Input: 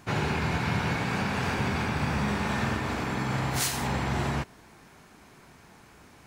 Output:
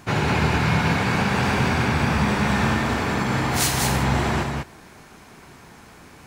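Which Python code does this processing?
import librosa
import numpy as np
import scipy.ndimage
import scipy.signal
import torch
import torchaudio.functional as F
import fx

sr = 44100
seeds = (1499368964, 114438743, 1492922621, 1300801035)

y = x + 10.0 ** (-4.0 / 20.0) * np.pad(x, (int(195 * sr / 1000.0), 0))[:len(x)]
y = y * 10.0 ** (6.0 / 20.0)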